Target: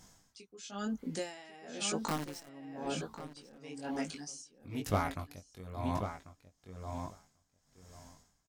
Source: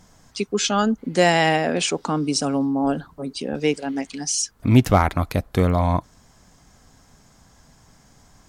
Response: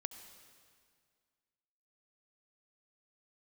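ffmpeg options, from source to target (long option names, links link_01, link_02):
-filter_complex "[0:a]highshelf=frequency=3500:gain=8.5,acompressor=threshold=-24dB:ratio=2,flanger=delay=19:depth=2.9:speed=1,asettb=1/sr,asplit=3[link_01][link_02][link_03];[link_01]atrim=end=2.084[link_04];[link_02]atrim=start=2.08:end=2.49,asetpts=PTS-STARTPTS,afade=type=in:duration=0.004:curve=qsin,afade=type=out:start_time=0.406:duration=0.004:curve=qsin,acrusher=bits=5:dc=4:mix=0:aa=0.000001[link_05];[link_03]atrim=start=2.486[link_06];[link_04][link_05]acrossfade=duration=0.004:curve1=hsin:curve2=qsin[link_07];[link_07][link_06]acrossfade=duration=0.004:curve1=qsin:curve2=hsin,asplit=2[link_08][link_09];[link_09]adelay=1091,lowpass=frequency=3200:poles=1,volume=-7dB,asplit=2[link_10][link_11];[link_11]adelay=1091,lowpass=frequency=3200:poles=1,volume=0.15,asplit=2[link_12][link_13];[link_13]adelay=1091,lowpass=frequency=3200:poles=1,volume=0.15[link_14];[link_08][link_10][link_12][link_14]amix=inputs=4:normalize=0,aeval=exprs='val(0)*pow(10,-22*(0.5-0.5*cos(2*PI*1*n/s))/20)':channel_layout=same,volume=-4.5dB"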